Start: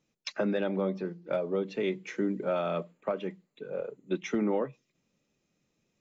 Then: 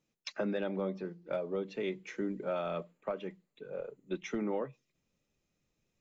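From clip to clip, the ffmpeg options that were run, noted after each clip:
ffmpeg -i in.wav -af "asubboost=boost=3.5:cutoff=96,volume=-4.5dB" out.wav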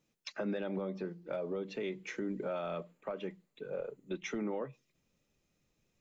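ffmpeg -i in.wav -af "alimiter=level_in=7dB:limit=-24dB:level=0:latency=1:release=142,volume=-7dB,volume=3dB" out.wav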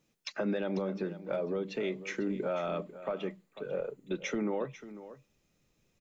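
ffmpeg -i in.wav -af "aecho=1:1:495:0.188,volume=4dB" out.wav

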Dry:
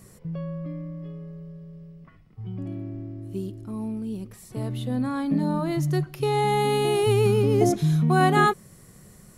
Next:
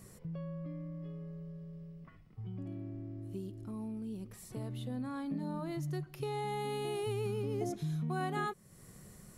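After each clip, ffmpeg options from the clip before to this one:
ffmpeg -i in.wav -af "acompressor=threshold=-38dB:ratio=2,volume=-4.5dB" out.wav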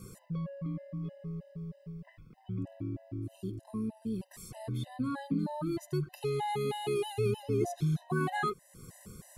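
ffmpeg -i in.wav -af "afftfilt=real='re*gt(sin(2*PI*3.2*pts/sr)*(1-2*mod(floor(b*sr/1024/520),2)),0)':imag='im*gt(sin(2*PI*3.2*pts/sr)*(1-2*mod(floor(b*sr/1024/520),2)),0)':win_size=1024:overlap=0.75,volume=7dB" out.wav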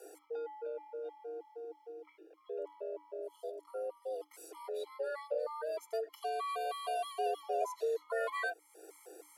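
ffmpeg -i in.wav -af "afreqshift=300,volume=-4.5dB" out.wav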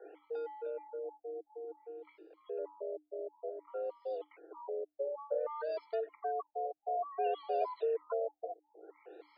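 ffmpeg -i in.wav -af "afftfilt=real='re*lt(b*sr/1024,730*pow(5300/730,0.5+0.5*sin(2*PI*0.56*pts/sr)))':imag='im*lt(b*sr/1024,730*pow(5300/730,0.5+0.5*sin(2*PI*0.56*pts/sr)))':win_size=1024:overlap=0.75,volume=1dB" out.wav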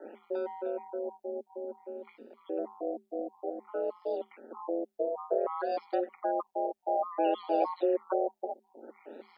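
ffmpeg -i in.wav -af "aeval=exprs='val(0)*sin(2*PI*88*n/s)':channel_layout=same,volume=8.5dB" out.wav

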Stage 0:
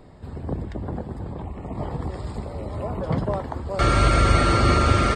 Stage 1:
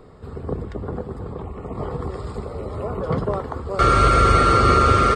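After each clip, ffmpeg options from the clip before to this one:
ffmpeg -i in.wav -af "superequalizer=7b=2.24:10b=2.24" out.wav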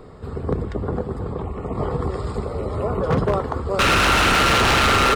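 ffmpeg -i in.wav -af "aeval=exprs='0.168*(abs(mod(val(0)/0.168+3,4)-2)-1)':channel_layout=same,volume=4dB" out.wav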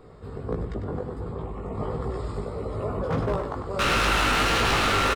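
ffmpeg -i in.wav -filter_complex "[0:a]flanger=delay=17.5:depth=2.4:speed=1.5,asplit=2[link_01][link_02];[link_02]aecho=0:1:99:0.398[link_03];[link_01][link_03]amix=inputs=2:normalize=0,volume=-3.5dB" out.wav

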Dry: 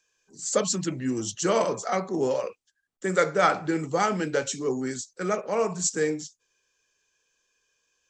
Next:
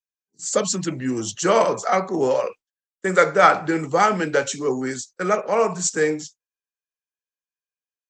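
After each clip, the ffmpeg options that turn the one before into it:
ffmpeg -i in.wav -filter_complex "[0:a]agate=range=-33dB:threshold=-39dB:ratio=3:detection=peak,acrossover=split=530|2600[link_01][link_02][link_03];[link_02]dynaudnorm=framelen=650:gausssize=3:maxgain=5.5dB[link_04];[link_01][link_04][link_03]amix=inputs=3:normalize=0,volume=3dB" out.wav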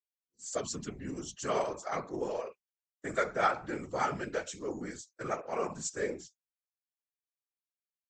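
ffmpeg -i in.wav -af "afftfilt=real='hypot(re,im)*cos(2*PI*random(0))':imag='hypot(re,im)*sin(2*PI*random(1))':win_size=512:overlap=0.75,volume=-8.5dB" out.wav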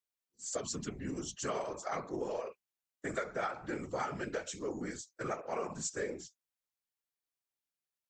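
ffmpeg -i in.wav -af "acompressor=threshold=-34dB:ratio=6,volume=1dB" out.wav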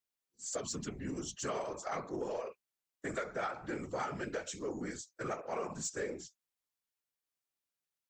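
ffmpeg -i in.wav -af "asoftclip=type=tanh:threshold=-26.5dB" out.wav

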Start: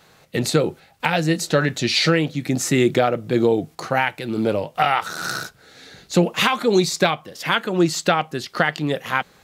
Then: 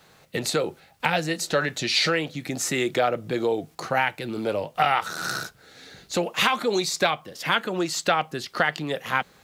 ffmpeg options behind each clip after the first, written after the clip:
ffmpeg -i in.wav -filter_complex "[0:a]acrossover=split=430[link_01][link_02];[link_01]acompressor=threshold=-28dB:ratio=6[link_03];[link_03][link_02]amix=inputs=2:normalize=0,acrusher=bits=10:mix=0:aa=0.000001,volume=-2.5dB" out.wav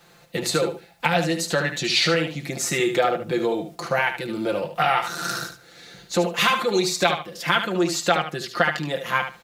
ffmpeg -i in.wav -af "bandreject=frequency=60:width_type=h:width=6,bandreject=frequency=120:width_type=h:width=6,aecho=1:1:5.8:0.65,aecho=1:1:74|148|222:0.376|0.0677|0.0122" out.wav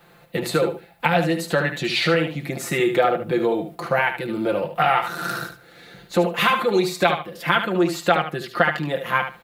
ffmpeg -i in.wav -af "equalizer=frequency=6100:width_type=o:width=1.2:gain=-12.5,volume=2.5dB" out.wav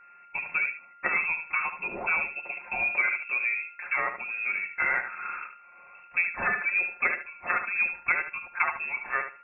ffmpeg -i in.wav -af "acrusher=bits=5:mode=log:mix=0:aa=0.000001,lowpass=frequency=2400:width_type=q:width=0.5098,lowpass=frequency=2400:width_type=q:width=0.6013,lowpass=frequency=2400:width_type=q:width=0.9,lowpass=frequency=2400:width_type=q:width=2.563,afreqshift=-2800,aeval=exprs='val(0)+0.00708*sin(2*PI*1400*n/s)':channel_layout=same,volume=-8dB" out.wav

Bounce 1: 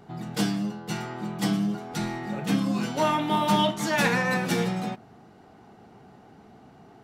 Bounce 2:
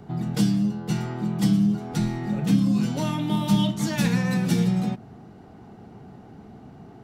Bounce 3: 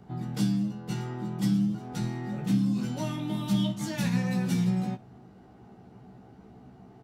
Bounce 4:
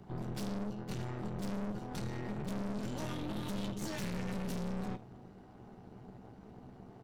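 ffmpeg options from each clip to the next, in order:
ffmpeg -i in.wav -filter_complex "[0:a]lowshelf=frequency=340:gain=11,acrossover=split=230|3000[link_01][link_02][link_03];[link_02]acompressor=threshold=-32dB:ratio=4[link_04];[link_01][link_04][link_03]amix=inputs=3:normalize=0" out.wav
ffmpeg -i in.wav -af "aecho=1:1:16|67:0.708|0.141,volume=-8dB" out.wav
ffmpeg -i in.wav -af "aeval=exprs='(tanh(79.4*val(0)+0.6)-tanh(0.6))/79.4':channel_layout=same,tremolo=f=220:d=0.667,volume=4dB" out.wav

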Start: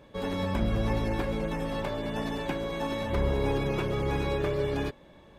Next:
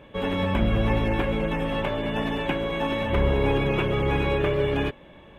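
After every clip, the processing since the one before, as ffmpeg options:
ffmpeg -i in.wav -af "highshelf=frequency=3700:width_type=q:width=3:gain=-7,volume=5dB" out.wav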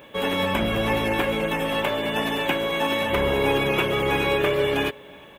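ffmpeg -i in.wav -filter_complex "[0:a]aemphasis=mode=production:type=bsi,asplit=2[link_01][link_02];[link_02]adelay=355.7,volume=-25dB,highshelf=frequency=4000:gain=-8[link_03];[link_01][link_03]amix=inputs=2:normalize=0,volume=4dB" out.wav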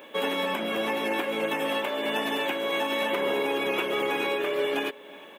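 ffmpeg -i in.wav -af "highpass=frequency=230:width=0.5412,highpass=frequency=230:width=1.3066,alimiter=limit=-17.5dB:level=0:latency=1:release=357" out.wav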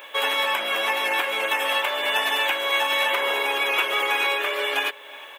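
ffmpeg -i in.wav -af "highpass=890,volume=8.5dB" out.wav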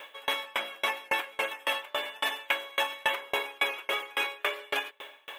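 ffmpeg -i in.wav -af "areverse,acompressor=mode=upward:threshold=-31dB:ratio=2.5,areverse,aeval=exprs='val(0)*pow(10,-32*if(lt(mod(3.6*n/s,1),2*abs(3.6)/1000),1-mod(3.6*n/s,1)/(2*abs(3.6)/1000),(mod(3.6*n/s,1)-2*abs(3.6)/1000)/(1-2*abs(3.6)/1000))/20)':channel_layout=same" out.wav

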